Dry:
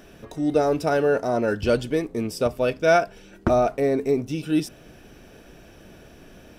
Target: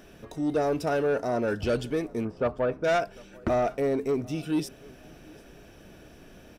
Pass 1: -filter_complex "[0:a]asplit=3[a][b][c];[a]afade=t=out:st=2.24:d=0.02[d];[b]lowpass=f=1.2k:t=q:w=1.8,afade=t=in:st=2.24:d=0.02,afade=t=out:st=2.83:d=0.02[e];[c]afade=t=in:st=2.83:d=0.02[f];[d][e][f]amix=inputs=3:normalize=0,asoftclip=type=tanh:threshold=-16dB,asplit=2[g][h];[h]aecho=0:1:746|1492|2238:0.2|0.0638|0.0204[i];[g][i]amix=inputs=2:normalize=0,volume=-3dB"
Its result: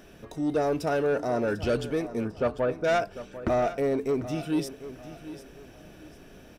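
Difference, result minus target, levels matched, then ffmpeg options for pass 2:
echo-to-direct +10.5 dB
-filter_complex "[0:a]asplit=3[a][b][c];[a]afade=t=out:st=2.24:d=0.02[d];[b]lowpass=f=1.2k:t=q:w=1.8,afade=t=in:st=2.24:d=0.02,afade=t=out:st=2.83:d=0.02[e];[c]afade=t=in:st=2.83:d=0.02[f];[d][e][f]amix=inputs=3:normalize=0,asoftclip=type=tanh:threshold=-16dB,asplit=2[g][h];[h]aecho=0:1:746|1492:0.0596|0.0191[i];[g][i]amix=inputs=2:normalize=0,volume=-3dB"

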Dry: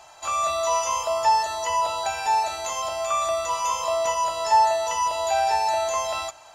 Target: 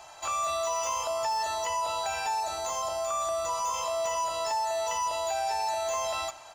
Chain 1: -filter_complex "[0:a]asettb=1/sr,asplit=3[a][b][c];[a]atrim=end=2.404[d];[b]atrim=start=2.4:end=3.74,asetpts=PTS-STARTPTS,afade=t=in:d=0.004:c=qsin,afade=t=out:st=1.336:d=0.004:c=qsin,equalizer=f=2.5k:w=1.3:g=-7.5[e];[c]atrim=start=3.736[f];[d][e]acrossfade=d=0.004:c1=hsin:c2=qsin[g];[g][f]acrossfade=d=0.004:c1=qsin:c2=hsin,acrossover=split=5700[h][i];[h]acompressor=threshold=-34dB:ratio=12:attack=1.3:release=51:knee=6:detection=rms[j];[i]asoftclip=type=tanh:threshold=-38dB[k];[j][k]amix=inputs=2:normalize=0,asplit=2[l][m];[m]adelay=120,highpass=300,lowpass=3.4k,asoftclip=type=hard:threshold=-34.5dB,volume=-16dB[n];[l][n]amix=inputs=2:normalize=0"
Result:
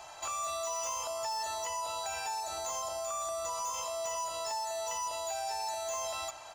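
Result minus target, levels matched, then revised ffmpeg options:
compressor: peak gain reduction +7.5 dB
-filter_complex "[0:a]asettb=1/sr,asplit=3[a][b][c];[a]atrim=end=2.404[d];[b]atrim=start=2.4:end=3.74,asetpts=PTS-STARTPTS,afade=t=in:d=0.004:c=qsin,afade=t=out:st=1.336:d=0.004:c=qsin,equalizer=f=2.5k:w=1.3:g=-7.5[e];[c]atrim=start=3.736[f];[d][e]acrossfade=d=0.004:c1=hsin:c2=qsin[g];[g][f]acrossfade=d=0.004:c1=qsin:c2=hsin,acrossover=split=5700[h][i];[h]acompressor=threshold=-26dB:ratio=12:attack=1.3:release=51:knee=6:detection=rms[j];[i]asoftclip=type=tanh:threshold=-38dB[k];[j][k]amix=inputs=2:normalize=0,asplit=2[l][m];[m]adelay=120,highpass=300,lowpass=3.4k,asoftclip=type=hard:threshold=-34.5dB,volume=-16dB[n];[l][n]amix=inputs=2:normalize=0"

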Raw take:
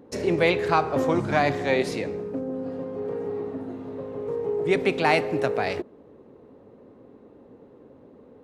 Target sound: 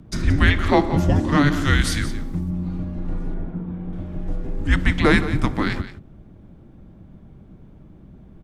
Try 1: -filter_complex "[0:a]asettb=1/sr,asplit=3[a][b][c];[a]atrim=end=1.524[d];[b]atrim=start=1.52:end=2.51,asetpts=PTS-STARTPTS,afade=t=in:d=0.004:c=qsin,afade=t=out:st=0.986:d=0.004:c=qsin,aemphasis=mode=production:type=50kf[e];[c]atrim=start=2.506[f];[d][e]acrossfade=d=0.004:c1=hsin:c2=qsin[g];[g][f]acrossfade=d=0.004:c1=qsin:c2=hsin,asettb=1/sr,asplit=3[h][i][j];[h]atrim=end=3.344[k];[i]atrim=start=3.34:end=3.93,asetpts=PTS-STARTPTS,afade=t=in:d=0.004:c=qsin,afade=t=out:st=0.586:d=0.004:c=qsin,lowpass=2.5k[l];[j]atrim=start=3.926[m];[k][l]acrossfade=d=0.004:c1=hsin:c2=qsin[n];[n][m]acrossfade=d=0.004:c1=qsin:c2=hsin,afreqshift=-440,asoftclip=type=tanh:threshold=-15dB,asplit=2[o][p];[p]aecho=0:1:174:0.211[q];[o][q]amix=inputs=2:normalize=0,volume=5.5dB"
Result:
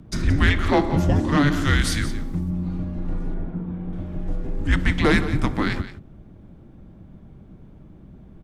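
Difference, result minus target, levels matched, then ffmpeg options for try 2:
soft clip: distortion +18 dB
-filter_complex "[0:a]asettb=1/sr,asplit=3[a][b][c];[a]atrim=end=1.524[d];[b]atrim=start=1.52:end=2.51,asetpts=PTS-STARTPTS,afade=t=in:d=0.004:c=qsin,afade=t=out:st=0.986:d=0.004:c=qsin,aemphasis=mode=production:type=50kf[e];[c]atrim=start=2.506[f];[d][e]acrossfade=d=0.004:c1=hsin:c2=qsin[g];[g][f]acrossfade=d=0.004:c1=qsin:c2=hsin,asettb=1/sr,asplit=3[h][i][j];[h]atrim=end=3.344[k];[i]atrim=start=3.34:end=3.93,asetpts=PTS-STARTPTS,afade=t=in:d=0.004:c=qsin,afade=t=out:st=0.586:d=0.004:c=qsin,lowpass=2.5k[l];[j]atrim=start=3.926[m];[k][l]acrossfade=d=0.004:c1=hsin:c2=qsin[n];[n][m]acrossfade=d=0.004:c1=qsin:c2=hsin,afreqshift=-440,asoftclip=type=tanh:threshold=-4dB,asplit=2[o][p];[p]aecho=0:1:174:0.211[q];[o][q]amix=inputs=2:normalize=0,volume=5.5dB"

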